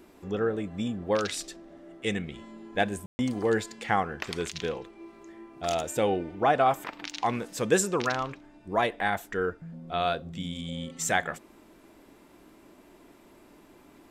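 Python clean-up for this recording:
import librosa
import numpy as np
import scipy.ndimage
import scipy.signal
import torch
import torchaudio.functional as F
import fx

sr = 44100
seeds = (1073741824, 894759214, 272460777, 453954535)

y = fx.fix_ambience(x, sr, seeds[0], print_start_s=12.13, print_end_s=12.63, start_s=3.06, end_s=3.19)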